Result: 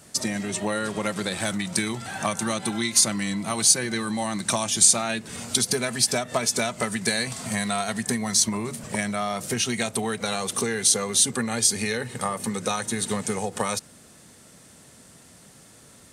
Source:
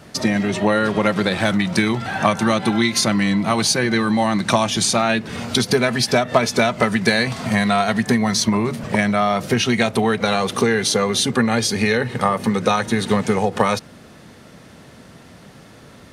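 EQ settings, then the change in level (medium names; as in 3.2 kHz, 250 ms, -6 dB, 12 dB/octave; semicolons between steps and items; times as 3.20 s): treble shelf 5.8 kHz +11.5 dB; peaking EQ 8.1 kHz +11 dB 0.7 oct; -10.0 dB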